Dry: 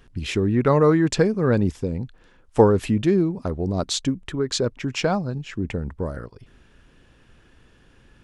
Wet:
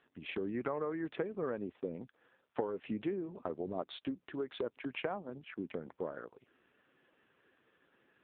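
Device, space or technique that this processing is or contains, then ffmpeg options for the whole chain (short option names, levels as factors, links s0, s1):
voicemail: -af "highpass=330,lowpass=2900,acompressor=threshold=0.0562:ratio=8,volume=0.473" -ar 8000 -c:a libopencore_amrnb -b:a 5900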